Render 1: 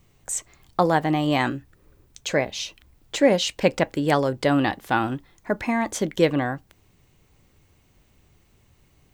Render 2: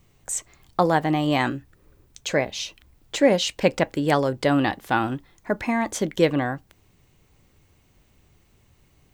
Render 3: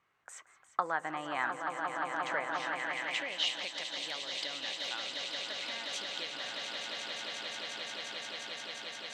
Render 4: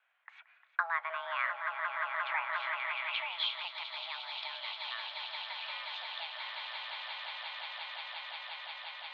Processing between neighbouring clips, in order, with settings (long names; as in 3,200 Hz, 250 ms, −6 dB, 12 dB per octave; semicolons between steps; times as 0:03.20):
no processing that can be heard
echo that builds up and dies away 176 ms, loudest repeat 8, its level −9 dB; downward compressor, threshold −19 dBFS, peak gain reduction 8.5 dB; band-pass filter sweep 1,400 Hz → 3,700 Hz, 0:02.56–0:03.67
single-sideband voice off tune +330 Hz 240–3,400 Hz